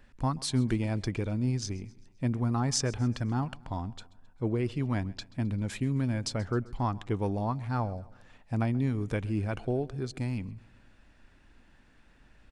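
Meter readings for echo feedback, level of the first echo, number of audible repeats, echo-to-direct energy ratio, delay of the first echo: 51%, −22.0 dB, 3, −20.5 dB, 132 ms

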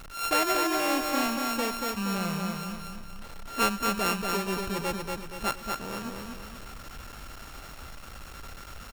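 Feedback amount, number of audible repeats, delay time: 45%, 5, 236 ms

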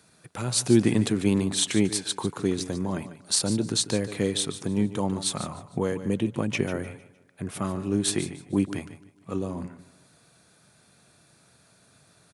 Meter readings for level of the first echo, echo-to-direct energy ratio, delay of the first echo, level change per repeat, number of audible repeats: −13.5 dB, −12.5 dB, 145 ms, repeats not evenly spaced, 3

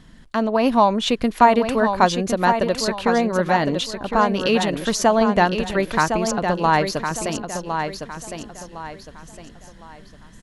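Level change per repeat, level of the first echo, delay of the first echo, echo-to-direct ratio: −9.5 dB, −7.0 dB, 1,059 ms, −6.5 dB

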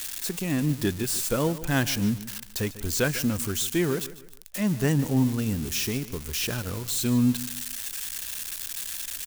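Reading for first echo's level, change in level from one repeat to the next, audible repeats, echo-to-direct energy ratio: −16.0 dB, −9.0 dB, 3, −15.5 dB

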